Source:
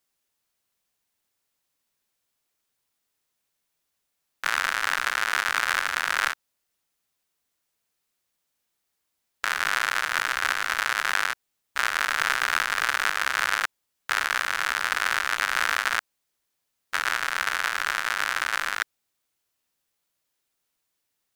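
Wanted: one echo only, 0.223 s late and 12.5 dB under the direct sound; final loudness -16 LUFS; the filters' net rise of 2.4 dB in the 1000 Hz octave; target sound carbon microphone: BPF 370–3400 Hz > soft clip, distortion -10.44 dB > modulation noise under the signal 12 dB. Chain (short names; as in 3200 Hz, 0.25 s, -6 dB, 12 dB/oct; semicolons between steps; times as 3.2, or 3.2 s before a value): BPF 370–3400 Hz; bell 1000 Hz +3.5 dB; echo 0.223 s -12.5 dB; soft clip -17 dBFS; modulation noise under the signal 12 dB; gain +12 dB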